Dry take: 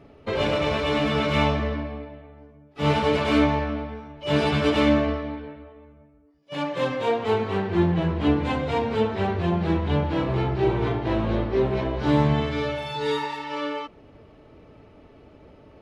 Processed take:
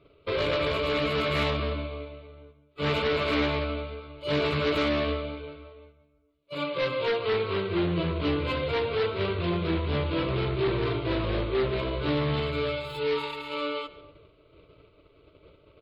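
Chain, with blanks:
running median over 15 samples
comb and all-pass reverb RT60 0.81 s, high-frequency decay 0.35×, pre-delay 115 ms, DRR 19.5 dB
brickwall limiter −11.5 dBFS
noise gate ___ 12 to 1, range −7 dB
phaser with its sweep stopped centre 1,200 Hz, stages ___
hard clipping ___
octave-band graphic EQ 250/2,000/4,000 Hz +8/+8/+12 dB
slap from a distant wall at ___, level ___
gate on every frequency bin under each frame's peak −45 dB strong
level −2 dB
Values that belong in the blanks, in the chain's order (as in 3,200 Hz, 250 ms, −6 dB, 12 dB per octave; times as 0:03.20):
−48 dBFS, 8, −23.5 dBFS, 25 metres, −19 dB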